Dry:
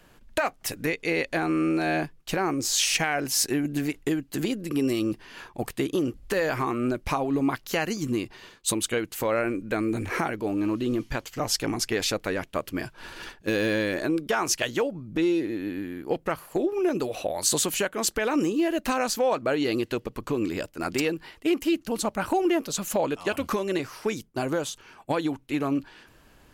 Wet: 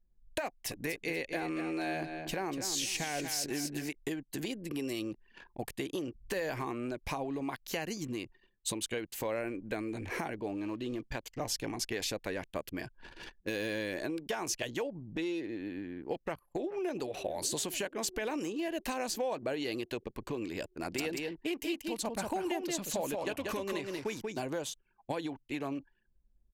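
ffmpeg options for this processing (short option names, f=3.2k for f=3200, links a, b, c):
-filter_complex "[0:a]asettb=1/sr,asplit=3[a][b][c];[a]atrim=end=0.474[d];[b]atrim=start=0.47:end=3.89,asetpts=PTS-STARTPTS,afade=t=in:d=0.004:c=qsin,afade=t=out:st=3.416:d=0.004:c=qsin,aecho=1:1:240|480|720:0.335|0.0971|0.0282,atrim=end_sample=150822[e];[c]atrim=start=3.886[f];[d][e]acrossfade=d=0.004:c1=hsin:c2=qsin[g];[g][f]acrossfade=d=0.004:c1=qsin:c2=hsin,asplit=2[h][i];[i]afade=t=in:st=16.25:d=0.01,afade=t=out:st=17.02:d=0.01,aecho=0:1:430|860|1290|1720|2150|2580|3010|3440|3870|4300|4730|5160:0.125893|0.100714|0.0805712|0.064457|0.0515656|0.0412525|0.033002|0.0264016|0.0211213|0.016897|0.0135176|0.0108141[j];[h][j]amix=inputs=2:normalize=0,asettb=1/sr,asplit=3[k][l][m];[k]atrim=end=20.734[n];[l]atrim=start=20.73:end=24.51,asetpts=PTS-STARTPTS,afade=t=in:d=0.004:c=qsin,afade=t=out:st=3.776:d=0.004:c=qsin,aecho=1:1:186:0.596,atrim=end_sample=166698[o];[m]atrim=start=24.506[p];[n][o]acrossfade=d=0.004:c1=hsin:c2=qsin[q];[q][p]acrossfade=d=0.004:c1=qsin:c2=hsin,anlmdn=0.398,equalizer=f=1.3k:t=o:w=0.35:g=-9.5,acrossover=split=530|7100[r][s][t];[r]acompressor=threshold=-32dB:ratio=4[u];[s]acompressor=threshold=-29dB:ratio=4[v];[t]acompressor=threshold=-35dB:ratio=4[w];[u][v][w]amix=inputs=3:normalize=0,volume=-5.5dB"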